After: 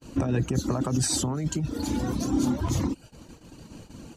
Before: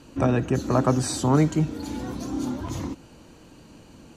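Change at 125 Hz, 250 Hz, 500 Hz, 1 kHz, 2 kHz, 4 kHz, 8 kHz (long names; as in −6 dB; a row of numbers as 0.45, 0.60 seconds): −2.5, −2.0, −6.5, −7.0, −4.5, +2.5, +4.0 decibels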